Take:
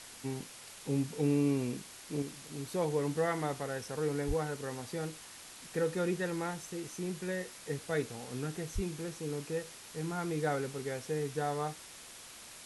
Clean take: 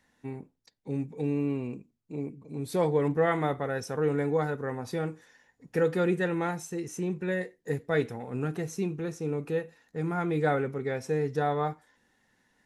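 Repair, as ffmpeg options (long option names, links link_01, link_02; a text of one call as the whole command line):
ffmpeg -i in.wav -filter_complex "[0:a]asplit=3[link_01][link_02][link_03];[link_01]afade=type=out:start_time=4.27:duration=0.02[link_04];[link_02]highpass=frequency=140:width=0.5412,highpass=frequency=140:width=1.3066,afade=type=in:start_time=4.27:duration=0.02,afade=type=out:start_time=4.39:duration=0.02[link_05];[link_03]afade=type=in:start_time=4.39:duration=0.02[link_06];[link_04][link_05][link_06]amix=inputs=3:normalize=0,asplit=3[link_07][link_08][link_09];[link_07]afade=type=out:start_time=8.74:duration=0.02[link_10];[link_08]highpass=frequency=140:width=0.5412,highpass=frequency=140:width=1.3066,afade=type=in:start_time=8.74:duration=0.02,afade=type=out:start_time=8.86:duration=0.02[link_11];[link_09]afade=type=in:start_time=8.86:duration=0.02[link_12];[link_10][link_11][link_12]amix=inputs=3:normalize=0,afwtdn=0.004,asetnsamples=nb_out_samples=441:pad=0,asendcmd='2.22 volume volume 6.5dB',volume=0dB" out.wav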